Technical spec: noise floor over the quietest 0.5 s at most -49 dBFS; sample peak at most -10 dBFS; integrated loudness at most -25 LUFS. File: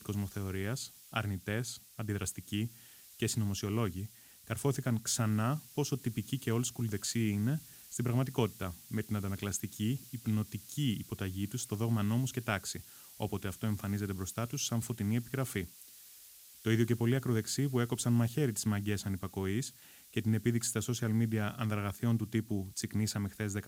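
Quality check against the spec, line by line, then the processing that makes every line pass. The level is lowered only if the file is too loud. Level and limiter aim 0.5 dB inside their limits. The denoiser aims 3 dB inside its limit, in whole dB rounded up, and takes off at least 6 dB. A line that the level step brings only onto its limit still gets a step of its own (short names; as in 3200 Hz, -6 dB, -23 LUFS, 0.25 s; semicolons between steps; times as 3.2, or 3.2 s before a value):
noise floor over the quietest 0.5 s -56 dBFS: OK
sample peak -15.0 dBFS: OK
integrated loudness -35.0 LUFS: OK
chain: none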